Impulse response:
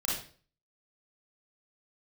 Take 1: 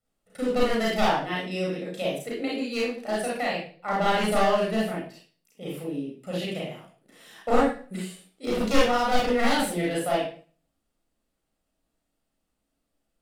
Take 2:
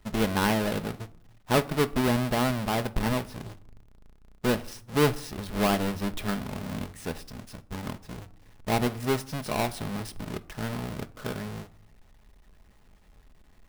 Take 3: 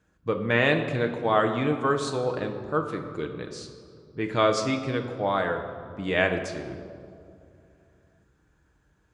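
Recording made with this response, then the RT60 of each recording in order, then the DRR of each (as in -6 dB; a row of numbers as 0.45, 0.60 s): 1; 0.45, 0.65, 2.6 s; -5.0, 10.5, 4.5 dB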